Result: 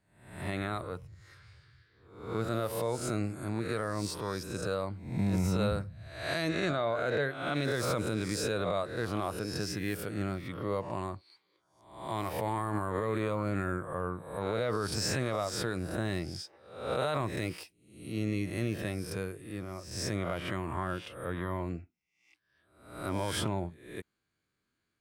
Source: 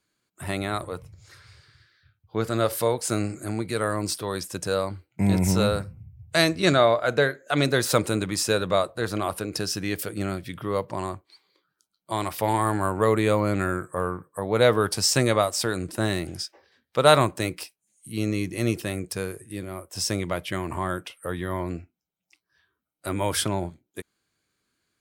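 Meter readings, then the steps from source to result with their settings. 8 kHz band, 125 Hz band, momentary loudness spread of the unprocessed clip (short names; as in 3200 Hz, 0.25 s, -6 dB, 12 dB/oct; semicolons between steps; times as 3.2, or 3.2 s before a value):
-11.5 dB, -6.5 dB, 14 LU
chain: spectral swells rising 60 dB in 0.63 s; tone controls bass +3 dB, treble -7 dB; limiter -13.5 dBFS, peak gain reduction 11.5 dB; gain -7.5 dB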